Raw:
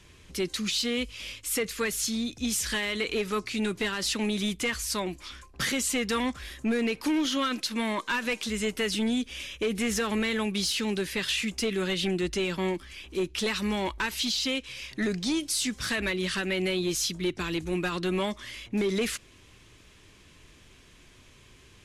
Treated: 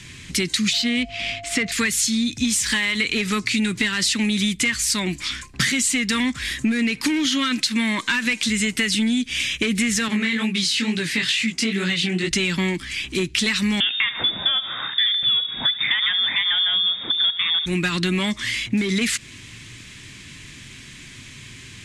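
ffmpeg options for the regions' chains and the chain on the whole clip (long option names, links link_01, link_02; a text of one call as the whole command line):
ffmpeg -i in.wav -filter_complex "[0:a]asettb=1/sr,asplit=3[link_01][link_02][link_03];[link_01]atrim=end=0.734[link_04];[link_02]atrim=start=0.73:end=1.72,asetpts=PTS-STARTPTS,afade=type=in:duration=0.004:curve=qsin,afade=type=out:start_time=0.986:duration=0.004:curve=qsin,aeval=exprs='val(0)+0.0112*sin(2*PI*690*n/s)':channel_layout=same,adynamicsmooth=sensitivity=2.5:basefreq=3000[link_05];[link_03]atrim=start=1.716[link_06];[link_04][link_05]acrossfade=duration=0.004:curve1=hsin:curve2=qsin[link_07];[link_07][link_06]acrossfade=duration=0.004:curve1=qsin:curve2=hsin,asettb=1/sr,asplit=3[link_08][link_09][link_10];[link_08]atrim=end=2.434[link_11];[link_09]atrim=start=2.43:end=2.98,asetpts=PTS-STARTPTS,afade=type=in:duration=0.004:curve=qsin,afade=type=out:start_time=0.546:duration=0.004:curve=qsin,equalizer=frequency=950:width=2.5:gain=8,aeval=exprs='sgn(val(0))*max(abs(val(0))-0.00422,0)':channel_layout=same[link_12];[link_10]atrim=start=2.976[link_13];[link_11][link_12]acrossfade=duration=0.004:curve1=hsin:curve2=qsin[link_14];[link_14][link_13]acrossfade=duration=0.004:curve1=qsin:curve2=hsin,asettb=1/sr,asplit=3[link_15][link_16][link_17];[link_15]atrim=end=10.084[link_18];[link_16]atrim=start=10.08:end=12.31,asetpts=PTS-STARTPTS,afade=type=in:duration=0.004:curve=qsin,afade=type=out:start_time=2.226:duration=0.004:curve=qsin,highpass=130,highshelf=frequency=7200:gain=-7.5,flanger=delay=17:depth=5.9:speed=2.2[link_19];[link_17]atrim=start=12.306[link_20];[link_18][link_19]acrossfade=duration=0.004:curve1=hsin:curve2=qsin[link_21];[link_21][link_20]acrossfade=duration=0.004:curve1=qsin:curve2=hsin,asettb=1/sr,asplit=3[link_22][link_23][link_24];[link_22]atrim=end=13.804[link_25];[link_23]atrim=start=13.8:end=17.66,asetpts=PTS-STARTPTS,afade=type=in:duration=0.004:curve=qsin,afade=type=out:start_time=3.856:duration=0.004:curve=qsin,lowshelf=frequency=440:gain=5,aecho=1:1:72|144|216|288|360:0.158|0.0888|0.0497|0.0278|0.0156,atrim=end_sample=170226,lowpass=frequency=3100:width_type=q:width=0.5098,lowpass=frequency=3100:width_type=q:width=0.6013,lowpass=frequency=3100:width_type=q:width=0.9,lowpass=frequency=3100:width_type=q:width=2.563,afreqshift=-3700[link_26];[link_24]atrim=start=17.656[link_27];[link_25][link_26]acrossfade=duration=0.004:curve1=hsin:curve2=qsin[link_28];[link_28][link_27]acrossfade=duration=0.004:curve1=qsin:curve2=hsin,equalizer=frequency=125:width_type=o:width=1:gain=12,equalizer=frequency=250:width_type=o:width=1:gain=9,equalizer=frequency=500:width_type=o:width=1:gain=-5,equalizer=frequency=2000:width_type=o:width=1:gain=12,equalizer=frequency=4000:width_type=o:width=1:gain=7,equalizer=frequency=8000:width_type=o:width=1:gain=12,acompressor=threshold=-23dB:ratio=6,volume=4.5dB" out.wav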